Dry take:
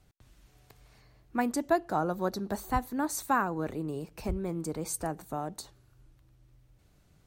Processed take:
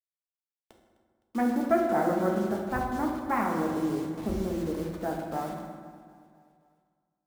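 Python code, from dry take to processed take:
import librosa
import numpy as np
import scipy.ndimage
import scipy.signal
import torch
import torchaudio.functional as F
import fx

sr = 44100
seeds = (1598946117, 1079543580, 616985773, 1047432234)

y = fx.self_delay(x, sr, depth_ms=0.28)
y = scipy.signal.sosfilt(scipy.signal.butter(4, 1600.0, 'lowpass', fs=sr, output='sos'), y)
y = fx.low_shelf(y, sr, hz=65.0, db=-10.0)
y = fx.quant_dither(y, sr, seeds[0], bits=8, dither='none')
y = fx.echo_feedback(y, sr, ms=257, feedback_pct=59, wet_db=-19)
y = fx.rev_fdn(y, sr, rt60_s=1.8, lf_ratio=1.2, hf_ratio=0.5, size_ms=27.0, drr_db=-0.5)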